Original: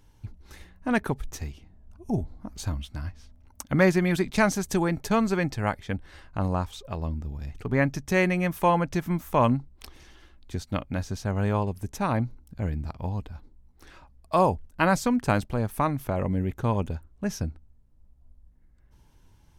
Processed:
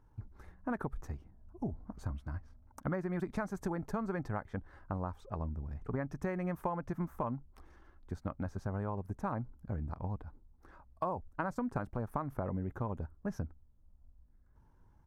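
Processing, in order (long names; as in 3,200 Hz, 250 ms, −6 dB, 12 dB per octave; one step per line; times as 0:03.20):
high shelf with overshoot 2,000 Hz −13 dB, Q 1.5
downward compressor 16 to 1, threshold −25 dBFS, peak gain reduction 12 dB
tempo change 1.3×
level −6 dB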